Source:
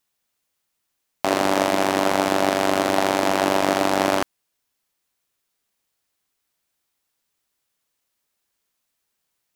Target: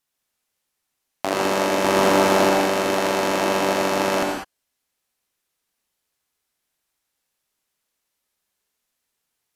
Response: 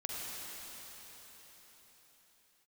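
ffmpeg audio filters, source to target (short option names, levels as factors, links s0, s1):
-filter_complex "[0:a]asettb=1/sr,asplit=3[s0][s1][s2];[s0]atrim=end=1.844[s3];[s1]atrim=start=1.84:end=2.49,asetpts=PTS-STARTPTS,afade=t=in:d=0.004:c=qsin,afade=t=out:st=0.646:d=0.004:c=qsin,acontrast=50[s4];[s2]atrim=start=2.486[s5];[s3][s4]acrossfade=d=0.004:c1=hsin:c2=qsin[s6];[s6][s5]acrossfade=d=0.004:c1=qsin:c2=hsin[s7];[1:a]atrim=start_sample=2205,afade=t=out:st=0.18:d=0.01,atrim=end_sample=8379,asetrate=27783,aresample=44100[s8];[s7][s8]afir=irnorm=-1:irlink=0,volume=0.794"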